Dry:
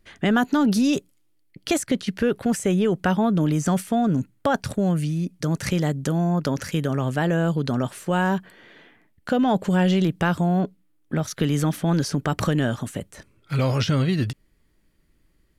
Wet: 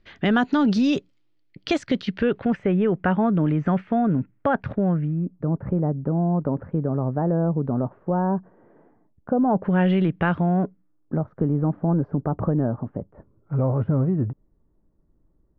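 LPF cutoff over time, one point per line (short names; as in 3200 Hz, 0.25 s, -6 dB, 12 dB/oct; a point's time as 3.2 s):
LPF 24 dB/oct
1.97 s 4700 Hz
2.68 s 2300 Hz
4.71 s 2300 Hz
5.48 s 1000 Hz
9.42 s 1000 Hz
9.82 s 2600 Hz
10.33 s 2600 Hz
11.26 s 1000 Hz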